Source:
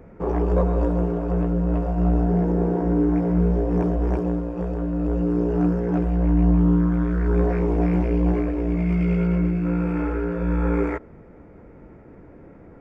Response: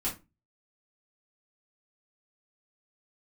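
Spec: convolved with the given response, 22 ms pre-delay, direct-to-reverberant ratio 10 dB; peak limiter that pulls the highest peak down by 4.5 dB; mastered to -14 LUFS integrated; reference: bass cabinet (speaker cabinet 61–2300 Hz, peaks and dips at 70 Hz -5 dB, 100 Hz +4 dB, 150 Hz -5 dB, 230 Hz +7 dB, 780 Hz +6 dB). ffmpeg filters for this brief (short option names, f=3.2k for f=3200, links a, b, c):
-filter_complex "[0:a]alimiter=limit=-13dB:level=0:latency=1,asplit=2[a][b];[1:a]atrim=start_sample=2205,adelay=22[c];[b][c]afir=irnorm=-1:irlink=0,volume=-15dB[d];[a][d]amix=inputs=2:normalize=0,highpass=f=61:w=0.5412,highpass=f=61:w=1.3066,equalizer=f=70:t=q:w=4:g=-5,equalizer=f=100:t=q:w=4:g=4,equalizer=f=150:t=q:w=4:g=-5,equalizer=f=230:t=q:w=4:g=7,equalizer=f=780:t=q:w=4:g=6,lowpass=f=2.3k:w=0.5412,lowpass=f=2.3k:w=1.3066,volume=9dB"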